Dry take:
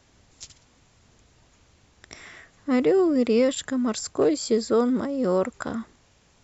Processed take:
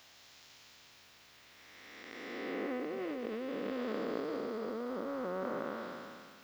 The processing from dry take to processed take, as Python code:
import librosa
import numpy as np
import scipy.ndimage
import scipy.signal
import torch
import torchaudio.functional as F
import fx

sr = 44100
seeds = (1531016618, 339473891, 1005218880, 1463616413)

y = fx.spec_blur(x, sr, span_ms=871.0)
y = fx.env_lowpass_down(y, sr, base_hz=2100.0, full_db=-28.0)
y = fx.tilt_eq(y, sr, slope=4.5)
y = fx.over_compress(y, sr, threshold_db=-37.0, ratio=-1.0)
y = fx.dmg_noise_colour(y, sr, seeds[0], colour='violet', level_db=-41.0)
y = fx.air_absorb(y, sr, metres=260.0)